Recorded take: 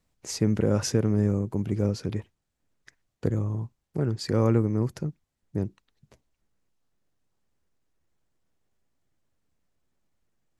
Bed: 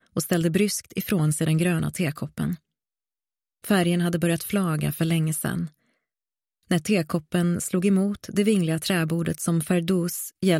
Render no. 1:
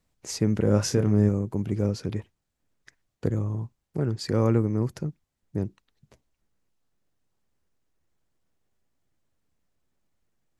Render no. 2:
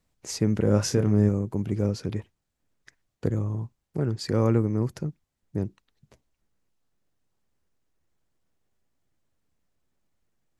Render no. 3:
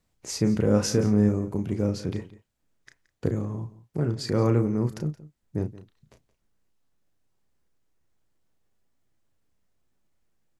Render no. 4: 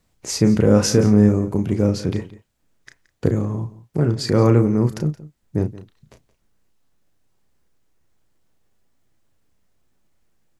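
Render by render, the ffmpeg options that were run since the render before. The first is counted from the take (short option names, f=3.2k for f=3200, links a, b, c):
-filter_complex "[0:a]asettb=1/sr,asplit=3[a][b][c];[a]atrim=end=0.624[d];[b]atrim=start=0.62:end=1.29,asetpts=PTS-STARTPTS,afade=t=in:d=0.004:c=qsin,afade=t=out:st=0.666:d=0.004:c=qsin,asplit=2[e][f];[f]adelay=29,volume=-6.5dB[g];[e][g]amix=inputs=2:normalize=0,atrim=end_sample=29547[h];[c]atrim=start=1.286[i];[d][h]acrossfade=d=0.004:c1=hsin:c2=qsin[j];[j][i]acrossfade=d=0.004:c1=qsin:c2=hsin"
-af anull
-filter_complex "[0:a]asplit=2[a][b];[b]adelay=33,volume=-7.5dB[c];[a][c]amix=inputs=2:normalize=0,aecho=1:1:173:0.126"
-af "volume=7.5dB,alimiter=limit=-3dB:level=0:latency=1"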